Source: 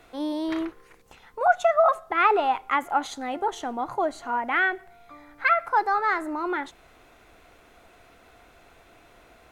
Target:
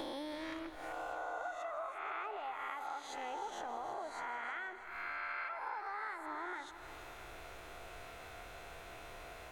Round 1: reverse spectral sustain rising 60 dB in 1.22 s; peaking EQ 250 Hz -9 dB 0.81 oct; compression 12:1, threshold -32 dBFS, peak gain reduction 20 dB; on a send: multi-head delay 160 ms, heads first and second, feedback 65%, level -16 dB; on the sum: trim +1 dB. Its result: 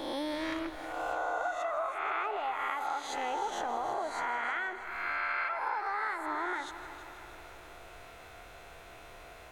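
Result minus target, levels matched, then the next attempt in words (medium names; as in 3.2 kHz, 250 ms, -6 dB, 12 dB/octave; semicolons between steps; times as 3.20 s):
compression: peak gain reduction -8 dB
reverse spectral sustain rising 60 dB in 1.22 s; peaking EQ 250 Hz -9 dB 0.81 oct; compression 12:1, threshold -41 dBFS, peak gain reduction 28.5 dB; on a send: multi-head delay 160 ms, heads first and second, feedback 65%, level -16 dB; on the sum: trim +1 dB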